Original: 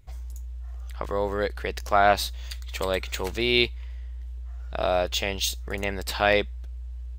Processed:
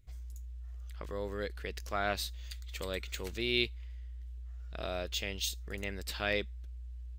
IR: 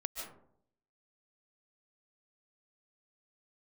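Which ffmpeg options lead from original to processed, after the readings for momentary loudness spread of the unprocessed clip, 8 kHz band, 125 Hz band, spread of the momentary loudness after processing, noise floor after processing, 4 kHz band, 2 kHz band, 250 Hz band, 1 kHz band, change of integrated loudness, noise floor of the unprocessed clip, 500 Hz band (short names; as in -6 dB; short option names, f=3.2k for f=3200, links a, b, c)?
17 LU, -8.0 dB, -8.0 dB, 15 LU, -44 dBFS, -8.5 dB, -10.0 dB, -9.0 dB, -16.0 dB, -12.0 dB, -36 dBFS, -12.5 dB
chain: -af "equalizer=f=830:t=o:w=1.1:g=-10.5,volume=-8dB"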